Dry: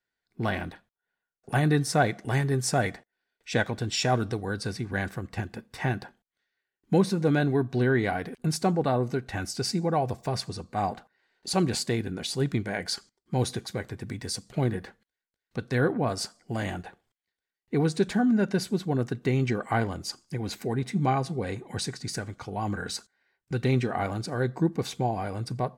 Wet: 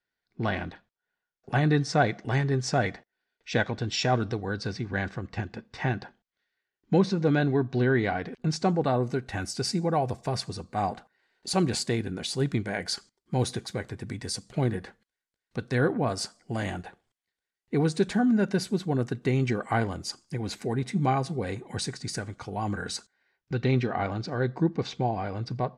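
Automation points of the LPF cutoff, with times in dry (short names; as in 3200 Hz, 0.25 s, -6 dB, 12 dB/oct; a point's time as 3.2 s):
LPF 24 dB/oct
8.43 s 6200 Hz
9.31 s 11000 Hz
22.9 s 11000 Hz
23.55 s 5500 Hz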